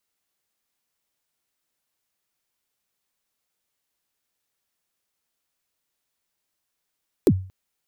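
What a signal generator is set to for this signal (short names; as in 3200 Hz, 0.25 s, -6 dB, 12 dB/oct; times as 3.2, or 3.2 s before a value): kick drum length 0.23 s, from 460 Hz, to 94 Hz, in 56 ms, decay 0.40 s, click on, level -9 dB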